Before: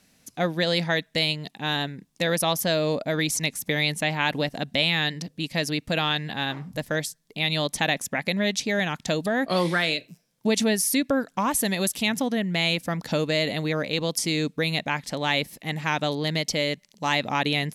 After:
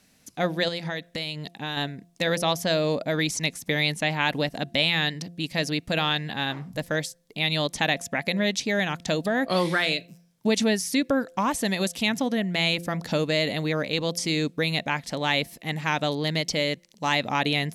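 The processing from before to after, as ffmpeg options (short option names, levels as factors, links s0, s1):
-filter_complex "[0:a]asettb=1/sr,asplit=3[s0][s1][s2];[s0]atrim=end=0.684[s3];[s1]atrim=start=0.68:end=1.77,asetpts=PTS-STARTPTS,afade=t=in:d=0.004:c=qsin,afade=t=out:st=1.086:d=0.004:c=qsin,acompressor=threshold=0.0447:ratio=4:attack=3.2:release=140:knee=1:detection=peak[s4];[s2]atrim=start=1.766[s5];[s3][s4]acrossfade=d=0.004:c1=hsin:c2=qsin[s6];[s6][s5]acrossfade=d=0.004:c1=qsin:c2=hsin,bandreject=f=172.4:t=h:w=4,bandreject=f=344.8:t=h:w=4,bandreject=f=517.2:t=h:w=4,bandreject=f=689.6:t=h:w=4,acrossover=split=7900[s7][s8];[s8]acompressor=threshold=0.00794:ratio=4:attack=1:release=60[s9];[s7][s9]amix=inputs=2:normalize=0"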